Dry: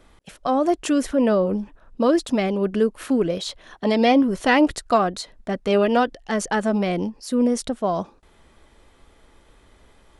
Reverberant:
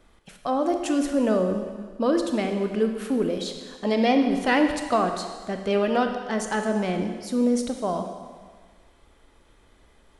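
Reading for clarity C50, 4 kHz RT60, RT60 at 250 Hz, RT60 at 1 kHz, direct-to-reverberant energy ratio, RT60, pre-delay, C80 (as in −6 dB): 6.0 dB, 1.6 s, 1.5 s, 1.6 s, 5.0 dB, 1.6 s, 24 ms, 7.5 dB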